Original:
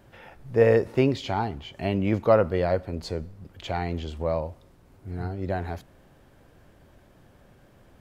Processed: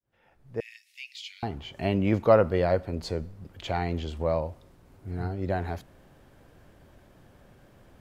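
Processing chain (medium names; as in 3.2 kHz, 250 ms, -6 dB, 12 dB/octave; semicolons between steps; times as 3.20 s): fade-in on the opening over 1.72 s; 0.60–1.43 s: steep high-pass 2.2 kHz 48 dB/octave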